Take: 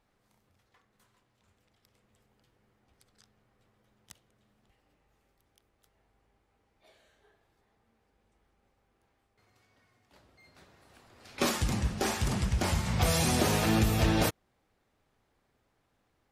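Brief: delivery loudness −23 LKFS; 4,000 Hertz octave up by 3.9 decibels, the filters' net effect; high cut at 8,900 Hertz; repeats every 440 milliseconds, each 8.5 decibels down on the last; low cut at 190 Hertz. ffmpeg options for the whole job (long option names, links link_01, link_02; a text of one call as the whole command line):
ffmpeg -i in.wav -af "highpass=190,lowpass=8900,equalizer=frequency=4000:width_type=o:gain=5,aecho=1:1:440|880|1320|1760:0.376|0.143|0.0543|0.0206,volume=6.5dB" out.wav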